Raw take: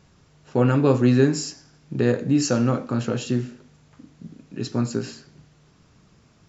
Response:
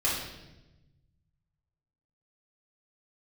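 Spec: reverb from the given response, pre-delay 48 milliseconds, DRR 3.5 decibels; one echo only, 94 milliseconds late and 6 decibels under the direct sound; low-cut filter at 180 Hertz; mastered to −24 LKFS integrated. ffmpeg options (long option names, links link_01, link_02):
-filter_complex "[0:a]highpass=180,aecho=1:1:94:0.501,asplit=2[link_01][link_02];[1:a]atrim=start_sample=2205,adelay=48[link_03];[link_02][link_03]afir=irnorm=-1:irlink=0,volume=-13.5dB[link_04];[link_01][link_04]amix=inputs=2:normalize=0,volume=-3dB"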